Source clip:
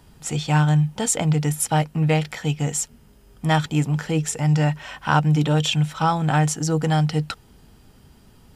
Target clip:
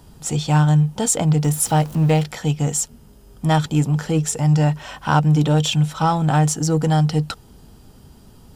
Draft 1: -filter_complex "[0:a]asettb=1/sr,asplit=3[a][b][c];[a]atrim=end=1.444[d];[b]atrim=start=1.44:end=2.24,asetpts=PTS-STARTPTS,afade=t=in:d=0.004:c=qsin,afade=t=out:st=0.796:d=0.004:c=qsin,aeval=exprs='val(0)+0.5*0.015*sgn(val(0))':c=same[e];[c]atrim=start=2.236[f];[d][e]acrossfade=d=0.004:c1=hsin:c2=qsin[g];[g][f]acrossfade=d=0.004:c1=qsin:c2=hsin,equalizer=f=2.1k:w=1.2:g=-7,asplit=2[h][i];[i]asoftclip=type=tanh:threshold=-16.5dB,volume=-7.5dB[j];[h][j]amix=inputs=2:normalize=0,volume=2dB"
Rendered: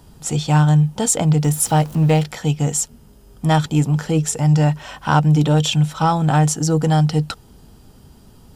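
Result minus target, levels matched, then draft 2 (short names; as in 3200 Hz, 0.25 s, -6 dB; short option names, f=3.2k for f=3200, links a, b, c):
soft clip: distortion -9 dB
-filter_complex "[0:a]asettb=1/sr,asplit=3[a][b][c];[a]atrim=end=1.444[d];[b]atrim=start=1.44:end=2.24,asetpts=PTS-STARTPTS,afade=t=in:d=0.004:c=qsin,afade=t=out:st=0.796:d=0.004:c=qsin,aeval=exprs='val(0)+0.5*0.015*sgn(val(0))':c=same[e];[c]atrim=start=2.236[f];[d][e]acrossfade=d=0.004:c1=hsin:c2=qsin[g];[g][f]acrossfade=d=0.004:c1=qsin:c2=hsin,equalizer=f=2.1k:w=1.2:g=-7,asplit=2[h][i];[i]asoftclip=type=tanh:threshold=-28dB,volume=-7.5dB[j];[h][j]amix=inputs=2:normalize=0,volume=2dB"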